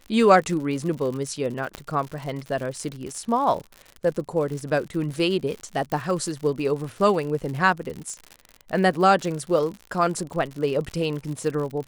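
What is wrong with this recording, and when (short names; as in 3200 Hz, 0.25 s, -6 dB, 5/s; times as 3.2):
crackle 97/s -31 dBFS
1.75 pop -16 dBFS
5.92 pop -15 dBFS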